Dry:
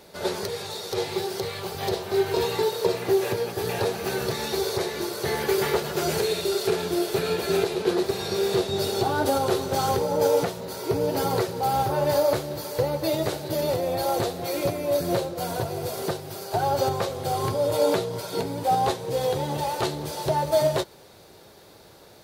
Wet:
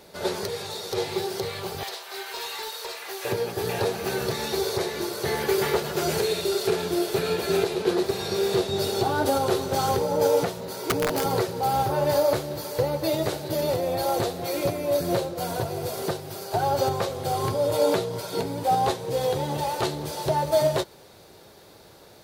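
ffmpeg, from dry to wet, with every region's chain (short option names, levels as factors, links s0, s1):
-filter_complex "[0:a]asettb=1/sr,asplit=3[s0][s1][s2];[s0]atrim=end=1.834[s3];[s1]atrim=start=1.83:end=3.25,asetpts=PTS-STARTPTS,afade=t=in:d=0.004:c=qsin,afade=t=out:st=1.416:d=0.004:c=qsin,highpass=1100,asoftclip=type=hard:threshold=0.0376[s4];[s2]atrim=start=3.246[s5];[s3][s4]acrossfade=d=0.004:c1=hsin:c2=qsin[s6];[s6][s5]acrossfade=d=0.004:c1=qsin:c2=hsin,asettb=1/sr,asplit=3[s7][s8][s9];[s7]atrim=end=10.714[s10];[s8]atrim=start=10.71:end=11.26,asetpts=PTS-STARTPTS,afade=t=in:d=0.004:c=qsin,afade=t=out:st=0.546:d=0.004:c=qsin,highpass=f=110:w=0.5412,highpass=f=110:w=1.3066,aeval=exprs='(mod(6.68*val(0)+1,2)-1)/6.68':c=same[s11];[s9]atrim=start=11.256[s12];[s10][s11]acrossfade=d=0.004:c1=hsin:c2=qsin[s13];[s13][s12]acrossfade=d=0.004:c1=qsin:c2=hsin"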